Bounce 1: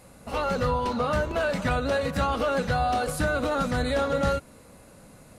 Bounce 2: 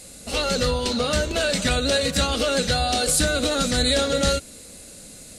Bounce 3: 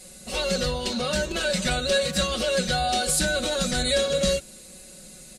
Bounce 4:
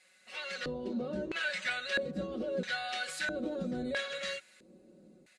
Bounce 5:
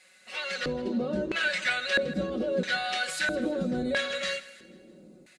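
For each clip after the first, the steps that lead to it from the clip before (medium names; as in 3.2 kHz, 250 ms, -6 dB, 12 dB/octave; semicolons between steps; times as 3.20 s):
graphic EQ 125/1000/4000/8000 Hz -7/-12/+8/+12 dB; trim +6 dB
comb 5.4 ms, depth 95%; trim -5.5 dB
level rider gain up to 4.5 dB; LFO band-pass square 0.76 Hz 310–1900 Hz; trim -4.5 dB
feedback delay 161 ms, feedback 44%, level -18 dB; trim +6.5 dB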